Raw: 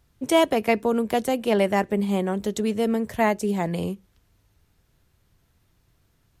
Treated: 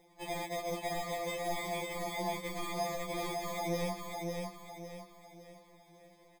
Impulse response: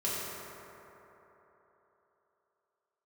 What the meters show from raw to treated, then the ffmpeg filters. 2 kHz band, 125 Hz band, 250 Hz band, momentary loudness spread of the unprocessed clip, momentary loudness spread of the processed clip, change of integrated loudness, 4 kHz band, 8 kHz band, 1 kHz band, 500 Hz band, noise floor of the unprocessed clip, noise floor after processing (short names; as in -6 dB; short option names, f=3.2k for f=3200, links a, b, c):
-10.0 dB, -11.5 dB, -18.0 dB, 6 LU, 14 LU, -14.0 dB, -8.5 dB, -6.0 dB, -10.5 dB, -14.0 dB, -66 dBFS, -63 dBFS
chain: -af "highpass=400,afftfilt=real='re*lt(hypot(re,im),0.447)':imag='im*lt(hypot(re,im),0.447)':win_size=1024:overlap=0.75,lowpass=f=1.5k:p=1,equalizer=f=670:w=0.43:g=10.5,aecho=1:1:1.2:0.52,acompressor=threshold=-32dB:ratio=3,alimiter=level_in=4dB:limit=-24dB:level=0:latency=1:release=10,volume=-4dB,acrusher=samples=31:mix=1:aa=0.000001,asoftclip=type=hard:threshold=-39.5dB,aecho=1:1:554|1108|1662|2216|2770:0.668|0.261|0.102|0.0396|0.0155,afftfilt=real='re*2.83*eq(mod(b,8),0)':imag='im*2.83*eq(mod(b,8),0)':win_size=2048:overlap=0.75,volume=7dB"